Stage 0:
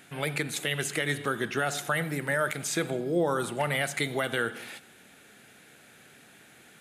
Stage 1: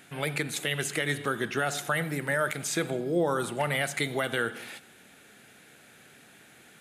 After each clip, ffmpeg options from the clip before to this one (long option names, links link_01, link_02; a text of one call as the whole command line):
ffmpeg -i in.wav -af anull out.wav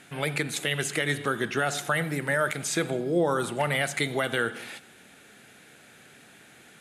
ffmpeg -i in.wav -af "lowpass=12000,volume=2dB" out.wav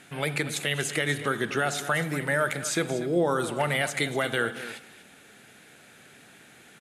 ffmpeg -i in.wav -af "aecho=1:1:240:0.2" out.wav